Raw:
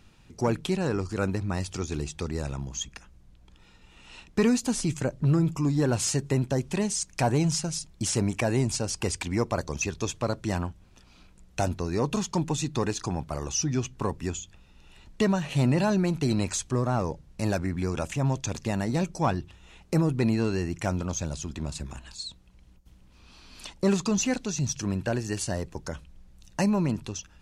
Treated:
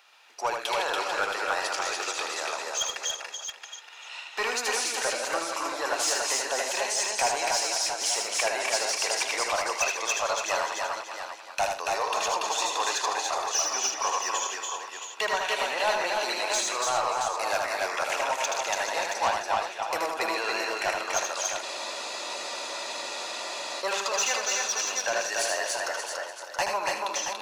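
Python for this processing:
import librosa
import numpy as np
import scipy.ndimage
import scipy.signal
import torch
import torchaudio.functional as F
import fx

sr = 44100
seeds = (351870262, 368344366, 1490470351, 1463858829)

p1 = fx.reverse_delay_fb(x, sr, ms=147, feedback_pct=54, wet_db=-7)
p2 = scipy.signal.sosfilt(scipy.signal.butter(4, 670.0, 'highpass', fs=sr, output='sos'), p1)
p3 = fx.peak_eq(p2, sr, hz=8400.0, db=-7.5, octaves=0.72)
p4 = fx.rider(p3, sr, range_db=3, speed_s=0.5)
p5 = p3 + (p4 * librosa.db_to_amplitude(1.0))
p6 = 10.0 ** (-19.0 / 20.0) * np.tanh(p5 / 10.0 ** (-19.0 / 20.0))
p7 = p6 + fx.echo_multitap(p6, sr, ms=(78, 128, 285, 327, 674), db=(-4.5, -16.0, -3.0, -16.5, -7.5), dry=0)
y = fx.spec_freeze(p7, sr, seeds[0], at_s=21.64, hold_s=2.17)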